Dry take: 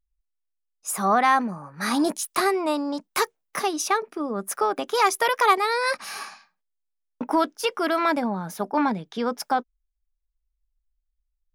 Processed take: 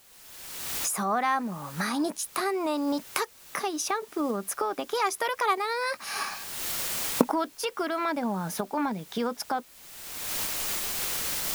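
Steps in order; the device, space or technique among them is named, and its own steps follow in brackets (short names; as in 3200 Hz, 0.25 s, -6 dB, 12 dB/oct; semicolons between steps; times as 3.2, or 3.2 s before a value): cheap recorder with automatic gain (white noise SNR 25 dB; recorder AGC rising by 35 dB/s); gain -7 dB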